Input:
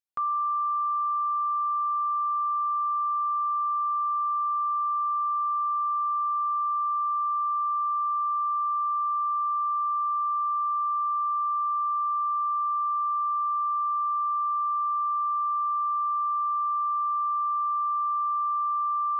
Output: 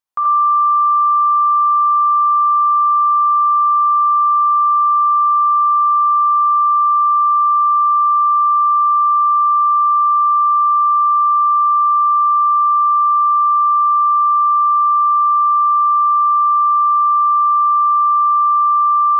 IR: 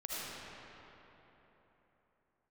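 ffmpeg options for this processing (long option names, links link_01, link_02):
-filter_complex "[0:a]equalizer=frequency=1000:width=1.5:gain=9.5[link_01];[1:a]atrim=start_sample=2205,atrim=end_sample=3969[link_02];[link_01][link_02]afir=irnorm=-1:irlink=0,volume=8.5dB"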